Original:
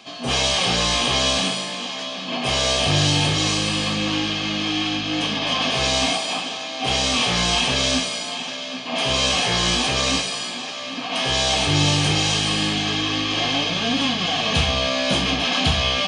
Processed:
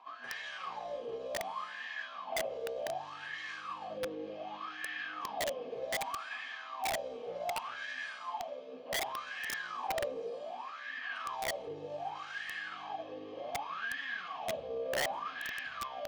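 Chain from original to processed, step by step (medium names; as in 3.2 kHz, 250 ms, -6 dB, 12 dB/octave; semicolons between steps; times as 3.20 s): peak limiter -17.5 dBFS, peak gain reduction 10 dB; wah-wah 0.66 Hz 460–1800 Hz, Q 15; integer overflow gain 34.5 dB; phaser 0.2 Hz, delay 1.5 ms, feedback 21%; trim +5.5 dB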